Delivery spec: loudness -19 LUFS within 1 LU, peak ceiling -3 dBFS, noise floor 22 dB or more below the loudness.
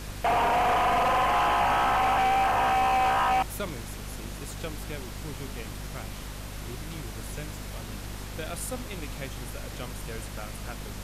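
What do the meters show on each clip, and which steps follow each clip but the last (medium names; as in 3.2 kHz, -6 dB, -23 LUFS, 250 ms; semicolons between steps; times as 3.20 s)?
hum 50 Hz; highest harmonic 250 Hz; hum level -37 dBFS; noise floor -39 dBFS; noise floor target -50 dBFS; loudness -27.5 LUFS; peak level -16.0 dBFS; loudness target -19.0 LUFS
-> hum notches 50/100/150/200/250 Hz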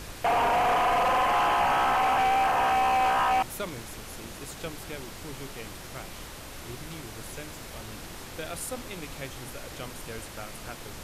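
hum not found; noise floor -42 dBFS; noise floor target -48 dBFS
-> noise print and reduce 6 dB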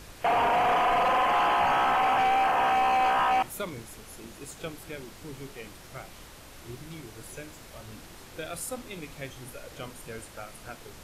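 noise floor -48 dBFS; loudness -24.5 LUFS; peak level -16.5 dBFS; loudness target -19.0 LUFS
-> trim +5.5 dB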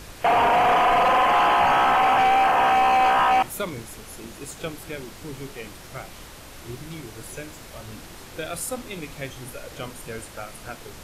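loudness -19.0 LUFS; peak level -11.0 dBFS; noise floor -43 dBFS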